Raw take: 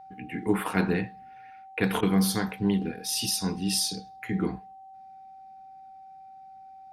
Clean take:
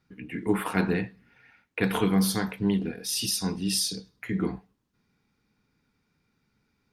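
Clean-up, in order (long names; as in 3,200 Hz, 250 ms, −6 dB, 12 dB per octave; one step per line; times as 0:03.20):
notch filter 770 Hz, Q 30
repair the gap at 0:02.01, 15 ms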